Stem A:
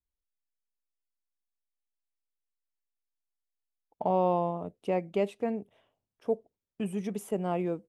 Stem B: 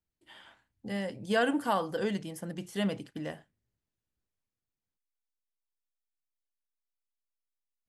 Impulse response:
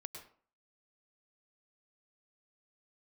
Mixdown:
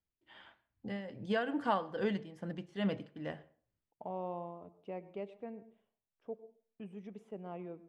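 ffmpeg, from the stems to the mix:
-filter_complex "[0:a]volume=-16.5dB,asplit=2[a][b];[b]volume=-5dB[c];[1:a]tremolo=f=2.4:d=0.65,volume=-2.5dB,asplit=2[d][e];[e]volume=-11.5dB[f];[2:a]atrim=start_sample=2205[g];[c][f]amix=inputs=2:normalize=0[h];[h][g]afir=irnorm=-1:irlink=0[i];[a][d][i]amix=inputs=3:normalize=0,lowpass=3.4k"

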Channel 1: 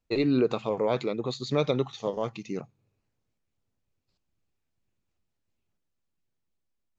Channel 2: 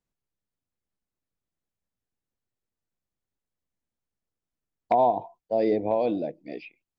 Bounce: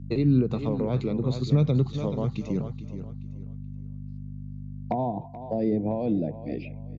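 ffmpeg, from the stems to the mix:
-filter_complex "[0:a]aeval=exprs='val(0)+0.00794*(sin(2*PI*50*n/s)+sin(2*PI*2*50*n/s)/2+sin(2*PI*3*50*n/s)/3+sin(2*PI*4*50*n/s)/4+sin(2*PI*5*50*n/s)/5)':c=same,volume=-3dB,asplit=2[a][b];[b]volume=-12dB[c];[1:a]volume=-2dB,asplit=3[d][e][f];[e]volume=-21dB[g];[f]apad=whole_len=307877[h];[a][h]sidechaincompress=threshold=-28dB:ratio=8:attack=16:release=1240[i];[c][g]amix=inputs=2:normalize=0,aecho=0:1:428|856|1284|1712:1|0.27|0.0729|0.0197[j];[i][d][j]amix=inputs=3:normalize=0,equalizer=f=150:t=o:w=2.1:g=15,acrossover=split=230[k][l];[l]acompressor=threshold=-28dB:ratio=4[m];[k][m]amix=inputs=2:normalize=0"

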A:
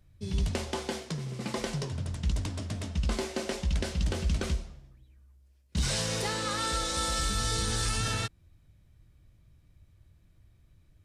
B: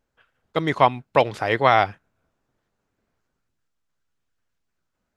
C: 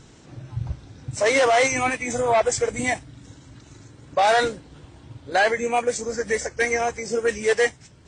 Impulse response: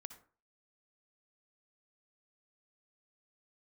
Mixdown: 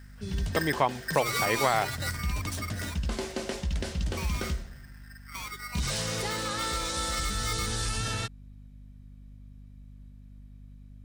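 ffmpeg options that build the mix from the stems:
-filter_complex "[0:a]aeval=exprs='val(0)+0.00447*(sin(2*PI*50*n/s)+sin(2*PI*2*50*n/s)/2+sin(2*PI*3*50*n/s)/3+sin(2*PI*4*50*n/s)/4+sin(2*PI*5*50*n/s)/5)':c=same,volume=0dB[a];[1:a]volume=-1dB,asplit=2[b][c];[2:a]acrossover=split=470|3000[d][e][f];[e]acompressor=threshold=-39dB:ratio=2.5[g];[d][g][f]amix=inputs=3:normalize=0,aeval=exprs='val(0)*sgn(sin(2*PI*1700*n/s))':c=same,volume=-2dB,asplit=2[h][i];[i]volume=-17dB[j];[c]apad=whole_len=356103[k];[h][k]sidechaingate=range=-13dB:threshold=-51dB:ratio=16:detection=peak[l];[3:a]atrim=start_sample=2205[m];[j][m]afir=irnorm=-1:irlink=0[n];[a][b][l][n]amix=inputs=4:normalize=0,acompressor=threshold=-27dB:ratio=2"

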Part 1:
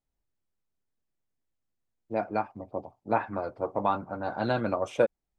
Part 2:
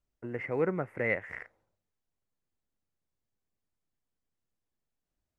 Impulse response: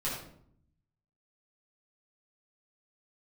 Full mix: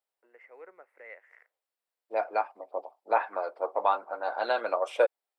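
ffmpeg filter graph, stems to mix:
-filter_complex "[0:a]equalizer=f=6.4k:w=6.8:g=-13.5,volume=2dB[a];[1:a]agate=range=-33dB:threshold=-59dB:ratio=3:detection=peak,volume=-16dB[b];[a][b]amix=inputs=2:normalize=0,highpass=f=480:w=0.5412,highpass=f=480:w=1.3066"

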